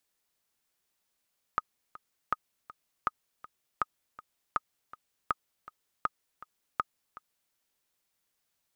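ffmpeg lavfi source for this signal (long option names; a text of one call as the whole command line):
ffmpeg -f lavfi -i "aevalsrc='pow(10,(-13.5-18.5*gte(mod(t,2*60/161),60/161))/20)*sin(2*PI*1250*mod(t,60/161))*exp(-6.91*mod(t,60/161)/0.03)':duration=5.96:sample_rate=44100" out.wav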